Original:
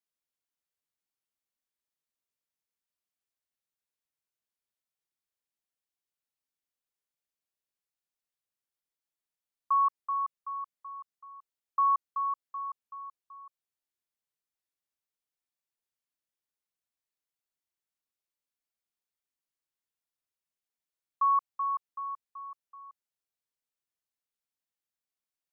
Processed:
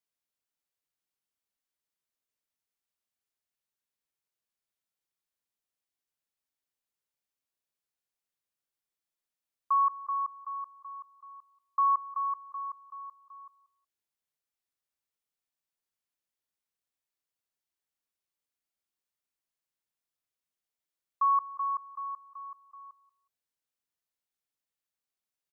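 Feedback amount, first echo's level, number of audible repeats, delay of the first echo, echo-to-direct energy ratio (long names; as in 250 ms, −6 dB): 23%, −18.5 dB, 2, 184 ms, −18.5 dB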